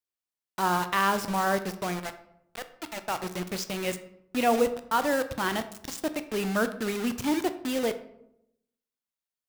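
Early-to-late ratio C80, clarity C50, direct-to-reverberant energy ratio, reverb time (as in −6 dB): 16.0 dB, 13.0 dB, 10.0 dB, 0.80 s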